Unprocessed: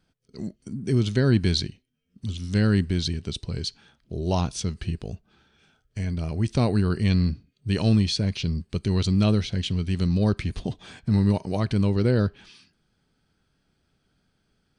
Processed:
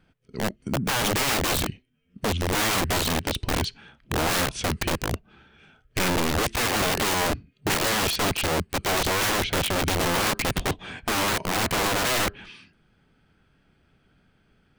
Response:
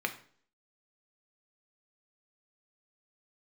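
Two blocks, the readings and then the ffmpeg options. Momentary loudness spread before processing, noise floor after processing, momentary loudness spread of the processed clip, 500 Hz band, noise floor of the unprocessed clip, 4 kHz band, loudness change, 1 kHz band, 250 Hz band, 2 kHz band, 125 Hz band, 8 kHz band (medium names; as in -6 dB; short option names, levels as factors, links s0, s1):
13 LU, -65 dBFS, 8 LU, +2.0 dB, -72 dBFS, +6.5 dB, +0.5 dB, +12.0 dB, -5.5 dB, +12.0 dB, -8.5 dB, +13.0 dB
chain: -af "highshelf=f=3500:t=q:w=1.5:g=-8,aeval=exprs='(mod(20*val(0)+1,2)-1)/20':c=same,volume=2.24"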